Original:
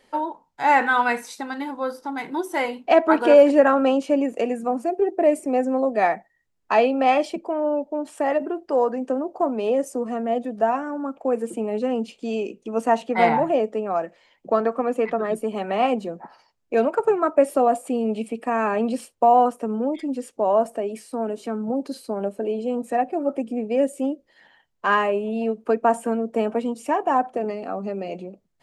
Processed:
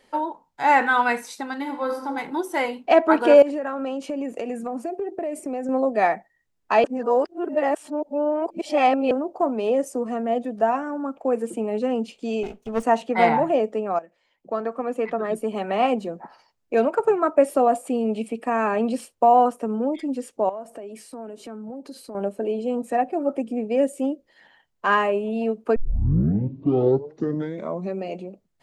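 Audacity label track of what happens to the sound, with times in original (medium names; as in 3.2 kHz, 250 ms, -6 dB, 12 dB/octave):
1.610000	2.100000	reverb throw, RT60 1 s, DRR 4.5 dB
3.420000	5.690000	compression 10:1, threshold -24 dBFS
6.840000	9.110000	reverse
12.430000	12.830000	comb filter that takes the minimum delay 4.7 ms
13.990000	15.520000	fade in, from -15.5 dB
20.490000	22.150000	compression 3:1, threshold -36 dBFS
25.760000	25.760000	tape start 2.26 s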